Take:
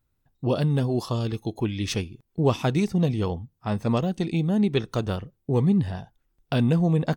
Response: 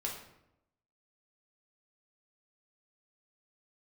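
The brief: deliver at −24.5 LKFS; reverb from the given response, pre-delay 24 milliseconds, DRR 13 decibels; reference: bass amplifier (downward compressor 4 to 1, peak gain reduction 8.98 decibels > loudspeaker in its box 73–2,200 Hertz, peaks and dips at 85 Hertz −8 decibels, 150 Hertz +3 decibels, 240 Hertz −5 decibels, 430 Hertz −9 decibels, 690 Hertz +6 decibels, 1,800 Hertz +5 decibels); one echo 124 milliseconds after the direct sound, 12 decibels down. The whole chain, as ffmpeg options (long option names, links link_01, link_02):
-filter_complex "[0:a]aecho=1:1:124:0.251,asplit=2[link_01][link_02];[1:a]atrim=start_sample=2205,adelay=24[link_03];[link_02][link_03]afir=irnorm=-1:irlink=0,volume=-15dB[link_04];[link_01][link_04]amix=inputs=2:normalize=0,acompressor=threshold=-25dB:ratio=4,highpass=frequency=73:width=0.5412,highpass=frequency=73:width=1.3066,equalizer=frequency=85:width_type=q:width=4:gain=-8,equalizer=frequency=150:width_type=q:width=4:gain=3,equalizer=frequency=240:width_type=q:width=4:gain=-5,equalizer=frequency=430:width_type=q:width=4:gain=-9,equalizer=frequency=690:width_type=q:width=4:gain=6,equalizer=frequency=1800:width_type=q:width=4:gain=5,lowpass=frequency=2200:width=0.5412,lowpass=frequency=2200:width=1.3066,volume=6.5dB"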